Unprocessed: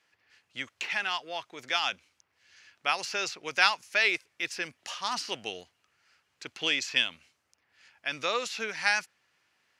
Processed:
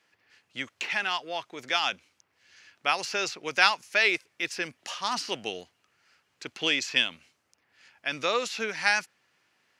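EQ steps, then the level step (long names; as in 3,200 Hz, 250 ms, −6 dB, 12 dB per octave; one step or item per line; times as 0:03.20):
high-pass filter 270 Hz 6 dB per octave
low-shelf EQ 360 Hz +10.5 dB
+1.5 dB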